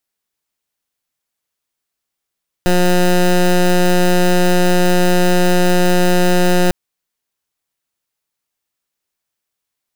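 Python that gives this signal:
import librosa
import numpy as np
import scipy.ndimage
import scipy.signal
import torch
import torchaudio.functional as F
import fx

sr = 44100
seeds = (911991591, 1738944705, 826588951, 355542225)

y = fx.pulse(sr, length_s=4.05, hz=179.0, level_db=-11.5, duty_pct=16)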